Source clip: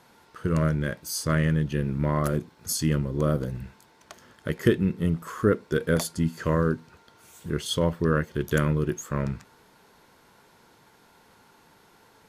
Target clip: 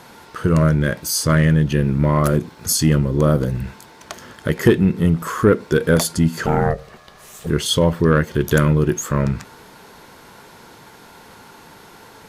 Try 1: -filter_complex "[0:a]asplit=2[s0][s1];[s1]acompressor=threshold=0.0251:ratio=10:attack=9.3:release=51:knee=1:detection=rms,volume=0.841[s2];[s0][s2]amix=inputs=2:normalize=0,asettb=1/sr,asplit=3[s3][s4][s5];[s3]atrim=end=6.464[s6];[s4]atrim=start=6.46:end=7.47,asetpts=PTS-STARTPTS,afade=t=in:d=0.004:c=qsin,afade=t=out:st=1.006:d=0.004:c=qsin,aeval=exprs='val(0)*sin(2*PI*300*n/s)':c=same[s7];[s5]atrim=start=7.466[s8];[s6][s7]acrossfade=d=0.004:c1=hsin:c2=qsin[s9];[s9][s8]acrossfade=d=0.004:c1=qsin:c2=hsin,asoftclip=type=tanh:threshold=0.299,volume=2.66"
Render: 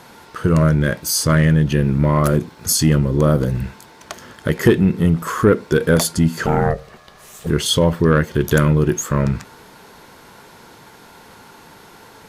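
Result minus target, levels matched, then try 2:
compression: peak gain reduction -7 dB
-filter_complex "[0:a]asplit=2[s0][s1];[s1]acompressor=threshold=0.01:ratio=10:attack=9.3:release=51:knee=1:detection=rms,volume=0.841[s2];[s0][s2]amix=inputs=2:normalize=0,asettb=1/sr,asplit=3[s3][s4][s5];[s3]atrim=end=6.464[s6];[s4]atrim=start=6.46:end=7.47,asetpts=PTS-STARTPTS,afade=t=in:d=0.004:c=qsin,afade=t=out:st=1.006:d=0.004:c=qsin,aeval=exprs='val(0)*sin(2*PI*300*n/s)':c=same[s7];[s5]atrim=start=7.466[s8];[s6][s7]acrossfade=d=0.004:c1=hsin:c2=qsin[s9];[s9][s8]acrossfade=d=0.004:c1=qsin:c2=hsin,asoftclip=type=tanh:threshold=0.299,volume=2.66"

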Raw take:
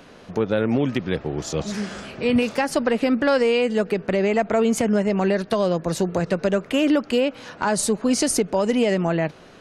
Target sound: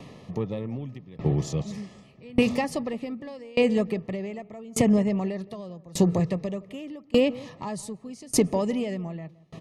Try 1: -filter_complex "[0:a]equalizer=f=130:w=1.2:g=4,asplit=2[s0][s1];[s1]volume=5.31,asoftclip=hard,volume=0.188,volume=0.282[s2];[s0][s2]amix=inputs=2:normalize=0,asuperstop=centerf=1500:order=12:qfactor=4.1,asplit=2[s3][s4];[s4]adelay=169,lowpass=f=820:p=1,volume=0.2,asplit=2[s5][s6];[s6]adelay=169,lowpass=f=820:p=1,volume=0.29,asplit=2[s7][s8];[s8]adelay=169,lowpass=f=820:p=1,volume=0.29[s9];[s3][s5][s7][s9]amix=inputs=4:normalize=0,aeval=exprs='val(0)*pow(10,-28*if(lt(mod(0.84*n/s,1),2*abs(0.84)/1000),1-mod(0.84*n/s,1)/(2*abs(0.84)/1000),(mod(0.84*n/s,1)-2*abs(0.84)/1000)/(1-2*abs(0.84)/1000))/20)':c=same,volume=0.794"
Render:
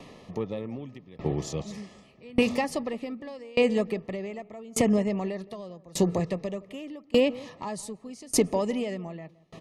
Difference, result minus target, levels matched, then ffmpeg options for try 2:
125 Hz band -4.0 dB
-filter_complex "[0:a]equalizer=f=130:w=1.2:g=12.5,asplit=2[s0][s1];[s1]volume=5.31,asoftclip=hard,volume=0.188,volume=0.282[s2];[s0][s2]amix=inputs=2:normalize=0,asuperstop=centerf=1500:order=12:qfactor=4.1,asplit=2[s3][s4];[s4]adelay=169,lowpass=f=820:p=1,volume=0.2,asplit=2[s5][s6];[s6]adelay=169,lowpass=f=820:p=1,volume=0.29,asplit=2[s7][s8];[s8]adelay=169,lowpass=f=820:p=1,volume=0.29[s9];[s3][s5][s7][s9]amix=inputs=4:normalize=0,aeval=exprs='val(0)*pow(10,-28*if(lt(mod(0.84*n/s,1),2*abs(0.84)/1000),1-mod(0.84*n/s,1)/(2*abs(0.84)/1000),(mod(0.84*n/s,1)-2*abs(0.84)/1000)/(1-2*abs(0.84)/1000))/20)':c=same,volume=0.794"

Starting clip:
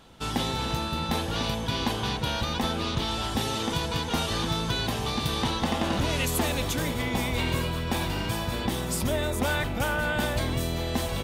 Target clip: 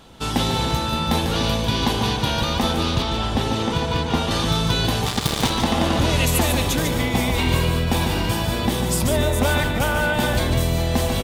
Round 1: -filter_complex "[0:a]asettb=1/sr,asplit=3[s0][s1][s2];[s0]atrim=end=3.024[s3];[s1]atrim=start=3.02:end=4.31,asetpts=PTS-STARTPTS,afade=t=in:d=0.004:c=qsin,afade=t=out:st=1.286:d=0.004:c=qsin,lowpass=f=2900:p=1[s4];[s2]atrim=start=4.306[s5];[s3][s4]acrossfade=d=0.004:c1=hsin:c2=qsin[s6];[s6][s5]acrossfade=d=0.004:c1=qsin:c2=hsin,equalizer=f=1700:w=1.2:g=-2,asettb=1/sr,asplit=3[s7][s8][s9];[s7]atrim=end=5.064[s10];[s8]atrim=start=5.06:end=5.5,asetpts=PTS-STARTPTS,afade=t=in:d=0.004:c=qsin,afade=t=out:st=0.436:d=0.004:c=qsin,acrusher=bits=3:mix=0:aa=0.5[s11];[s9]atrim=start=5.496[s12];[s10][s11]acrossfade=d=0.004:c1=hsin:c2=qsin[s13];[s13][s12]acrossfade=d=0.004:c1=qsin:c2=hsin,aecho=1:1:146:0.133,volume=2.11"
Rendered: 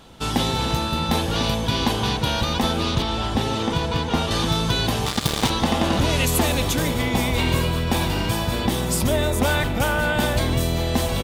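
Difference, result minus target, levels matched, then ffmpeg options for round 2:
echo-to-direct -11 dB
-filter_complex "[0:a]asettb=1/sr,asplit=3[s0][s1][s2];[s0]atrim=end=3.024[s3];[s1]atrim=start=3.02:end=4.31,asetpts=PTS-STARTPTS,afade=t=in:d=0.004:c=qsin,afade=t=out:st=1.286:d=0.004:c=qsin,lowpass=f=2900:p=1[s4];[s2]atrim=start=4.306[s5];[s3][s4]acrossfade=d=0.004:c1=hsin:c2=qsin[s6];[s6][s5]acrossfade=d=0.004:c1=qsin:c2=hsin,equalizer=f=1700:w=1.2:g=-2,asettb=1/sr,asplit=3[s7][s8][s9];[s7]atrim=end=5.064[s10];[s8]atrim=start=5.06:end=5.5,asetpts=PTS-STARTPTS,afade=t=in:d=0.004:c=qsin,afade=t=out:st=0.436:d=0.004:c=qsin,acrusher=bits=3:mix=0:aa=0.5[s11];[s9]atrim=start=5.496[s12];[s10][s11]acrossfade=d=0.004:c1=hsin:c2=qsin[s13];[s13][s12]acrossfade=d=0.004:c1=qsin:c2=hsin,aecho=1:1:146:0.473,volume=2.11"

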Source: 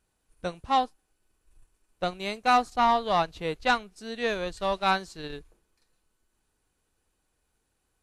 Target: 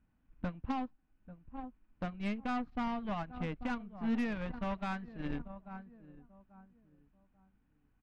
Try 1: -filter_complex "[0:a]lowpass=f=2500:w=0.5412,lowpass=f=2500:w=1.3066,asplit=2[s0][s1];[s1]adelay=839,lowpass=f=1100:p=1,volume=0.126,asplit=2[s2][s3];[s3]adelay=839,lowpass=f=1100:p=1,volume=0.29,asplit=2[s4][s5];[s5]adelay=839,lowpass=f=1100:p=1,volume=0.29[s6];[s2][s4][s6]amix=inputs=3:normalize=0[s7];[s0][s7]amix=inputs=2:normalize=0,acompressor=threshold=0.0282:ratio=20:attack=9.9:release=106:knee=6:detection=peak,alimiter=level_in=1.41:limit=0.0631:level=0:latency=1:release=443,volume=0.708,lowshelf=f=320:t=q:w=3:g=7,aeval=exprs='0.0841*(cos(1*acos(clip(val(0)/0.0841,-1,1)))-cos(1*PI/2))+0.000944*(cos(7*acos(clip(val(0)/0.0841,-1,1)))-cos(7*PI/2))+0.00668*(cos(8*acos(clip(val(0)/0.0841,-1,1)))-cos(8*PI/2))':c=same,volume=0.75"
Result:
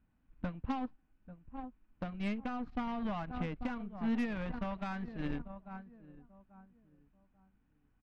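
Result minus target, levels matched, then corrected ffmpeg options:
compression: peak gain reduction +15 dB
-filter_complex "[0:a]lowpass=f=2500:w=0.5412,lowpass=f=2500:w=1.3066,asplit=2[s0][s1];[s1]adelay=839,lowpass=f=1100:p=1,volume=0.126,asplit=2[s2][s3];[s3]adelay=839,lowpass=f=1100:p=1,volume=0.29,asplit=2[s4][s5];[s5]adelay=839,lowpass=f=1100:p=1,volume=0.29[s6];[s2][s4][s6]amix=inputs=3:normalize=0[s7];[s0][s7]amix=inputs=2:normalize=0,alimiter=level_in=1.41:limit=0.0631:level=0:latency=1:release=443,volume=0.708,lowshelf=f=320:t=q:w=3:g=7,aeval=exprs='0.0841*(cos(1*acos(clip(val(0)/0.0841,-1,1)))-cos(1*PI/2))+0.000944*(cos(7*acos(clip(val(0)/0.0841,-1,1)))-cos(7*PI/2))+0.00668*(cos(8*acos(clip(val(0)/0.0841,-1,1)))-cos(8*PI/2))':c=same,volume=0.75"

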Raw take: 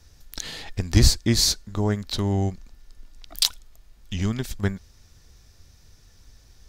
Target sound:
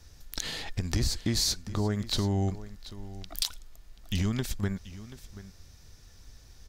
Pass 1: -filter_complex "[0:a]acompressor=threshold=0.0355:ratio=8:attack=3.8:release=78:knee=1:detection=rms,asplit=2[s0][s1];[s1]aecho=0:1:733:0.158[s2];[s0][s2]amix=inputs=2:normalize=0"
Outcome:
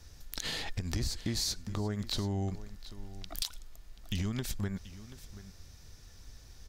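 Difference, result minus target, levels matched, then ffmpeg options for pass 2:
compression: peak gain reduction +5.5 dB
-filter_complex "[0:a]acompressor=threshold=0.075:ratio=8:attack=3.8:release=78:knee=1:detection=rms,asplit=2[s0][s1];[s1]aecho=0:1:733:0.158[s2];[s0][s2]amix=inputs=2:normalize=0"

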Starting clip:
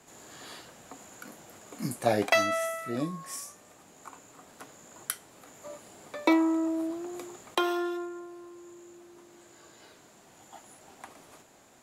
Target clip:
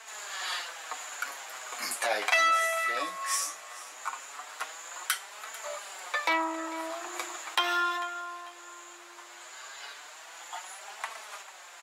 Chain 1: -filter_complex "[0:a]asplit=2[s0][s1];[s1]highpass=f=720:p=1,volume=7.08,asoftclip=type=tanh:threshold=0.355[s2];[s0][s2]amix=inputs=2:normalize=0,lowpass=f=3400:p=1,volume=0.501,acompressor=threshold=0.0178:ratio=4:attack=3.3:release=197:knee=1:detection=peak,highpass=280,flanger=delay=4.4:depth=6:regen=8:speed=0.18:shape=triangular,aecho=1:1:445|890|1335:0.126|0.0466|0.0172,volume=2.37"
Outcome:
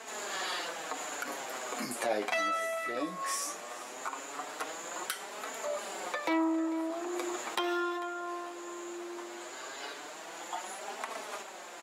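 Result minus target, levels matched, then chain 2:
250 Hz band +13.5 dB; compression: peak gain reduction +9 dB
-filter_complex "[0:a]asplit=2[s0][s1];[s1]highpass=f=720:p=1,volume=7.08,asoftclip=type=tanh:threshold=0.355[s2];[s0][s2]amix=inputs=2:normalize=0,lowpass=f=3400:p=1,volume=0.501,acompressor=threshold=0.0708:ratio=4:attack=3.3:release=197:knee=1:detection=peak,highpass=1000,flanger=delay=4.4:depth=6:regen=8:speed=0.18:shape=triangular,aecho=1:1:445|890|1335:0.126|0.0466|0.0172,volume=2.37"

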